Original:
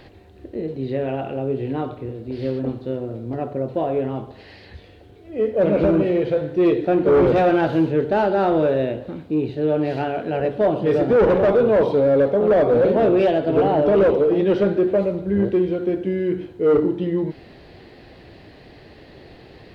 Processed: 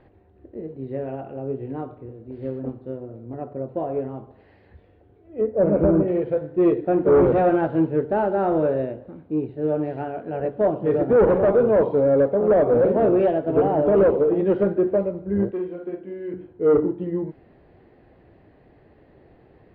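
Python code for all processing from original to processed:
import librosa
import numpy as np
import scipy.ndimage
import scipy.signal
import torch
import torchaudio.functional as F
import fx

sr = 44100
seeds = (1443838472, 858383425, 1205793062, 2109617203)

y = fx.chain(x, sr, fx.lowpass(hz=1700.0, slope=12),
    fx.low_shelf(hz=160.0, db=4.0), at=(5.41, 6.08))
y = fx.chain(y, sr, fx.low_shelf(hz=370.0, db=-10.5),
    fx.doubler(ms=46.0, db=-5.0), at=(15.51, 16.34))
y = scipy.signal.sosfilt(scipy.signal.butter(2, 1500.0, 'lowpass', fs=sr, output='sos'), y)
y = fx.upward_expand(y, sr, threshold_db=-29.0, expansion=1.5)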